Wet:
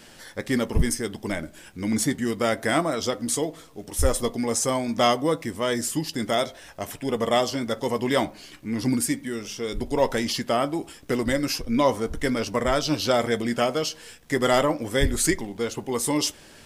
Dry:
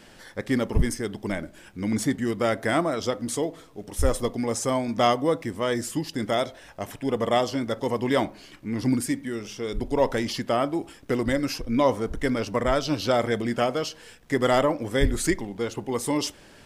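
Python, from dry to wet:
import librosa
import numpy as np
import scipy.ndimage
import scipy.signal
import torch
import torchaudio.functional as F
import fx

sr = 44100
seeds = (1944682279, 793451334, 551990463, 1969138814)

y = fx.high_shelf(x, sr, hz=3700.0, db=7.0)
y = fx.doubler(y, sr, ms=13.0, db=-12.0)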